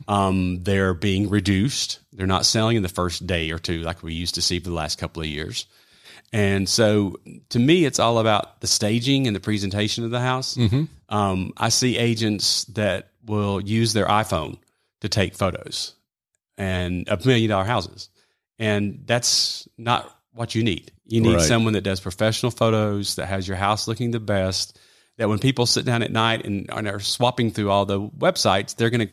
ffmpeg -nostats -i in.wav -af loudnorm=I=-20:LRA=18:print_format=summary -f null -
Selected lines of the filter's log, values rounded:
Input Integrated:    -21.8 LUFS
Input True Peak:      -3.3 dBTP
Input LRA:             3.2 LU
Input Threshold:     -32.1 LUFS